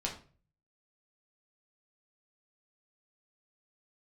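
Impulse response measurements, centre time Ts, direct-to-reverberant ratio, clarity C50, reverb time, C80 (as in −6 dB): 20 ms, −2.0 dB, 8.5 dB, 0.40 s, 13.5 dB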